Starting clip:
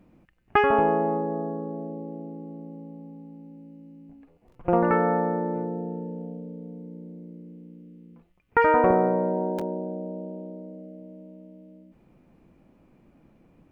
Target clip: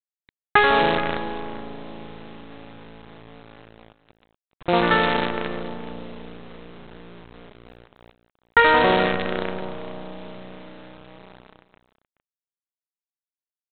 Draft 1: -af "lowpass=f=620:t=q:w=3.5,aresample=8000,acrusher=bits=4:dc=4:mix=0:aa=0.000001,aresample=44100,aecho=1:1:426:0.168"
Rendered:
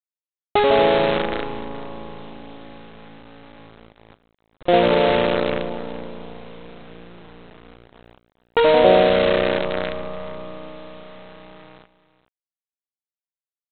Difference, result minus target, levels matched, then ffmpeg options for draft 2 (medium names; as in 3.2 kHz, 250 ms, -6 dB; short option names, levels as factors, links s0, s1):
2 kHz band -6.5 dB
-af "lowpass=f=1900:t=q:w=3.5,aresample=8000,acrusher=bits=4:dc=4:mix=0:aa=0.000001,aresample=44100,aecho=1:1:426:0.168"